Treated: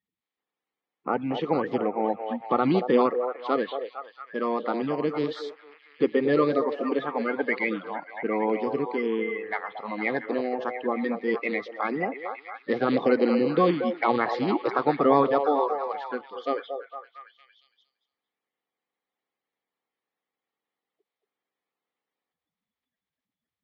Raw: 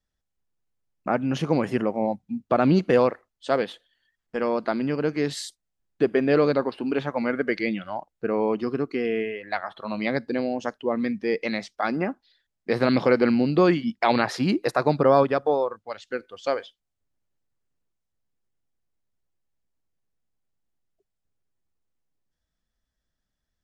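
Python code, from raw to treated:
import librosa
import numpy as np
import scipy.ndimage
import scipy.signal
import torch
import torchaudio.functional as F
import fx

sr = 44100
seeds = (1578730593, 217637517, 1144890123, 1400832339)

y = fx.spec_quant(x, sr, step_db=30)
y = fx.cabinet(y, sr, low_hz=310.0, low_slope=12, high_hz=3300.0, hz=(360.0, 620.0, 960.0, 1500.0, 2700.0), db=(-4, -10, -5, -10, -7))
y = fx.echo_stepped(y, sr, ms=229, hz=610.0, octaves=0.7, feedback_pct=70, wet_db=-4)
y = F.gain(torch.from_numpy(y), 4.0).numpy()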